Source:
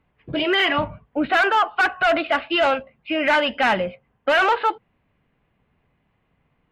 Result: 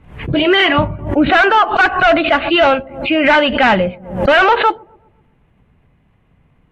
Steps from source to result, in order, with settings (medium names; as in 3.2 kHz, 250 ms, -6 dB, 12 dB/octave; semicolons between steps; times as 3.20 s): knee-point frequency compression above 4 kHz 1.5:1; bass shelf 230 Hz +9 dB; on a send: feedback echo behind a low-pass 127 ms, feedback 47%, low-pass 620 Hz, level -22 dB; on the sum: swell ahead of each attack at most 100 dB/s; trim +6.5 dB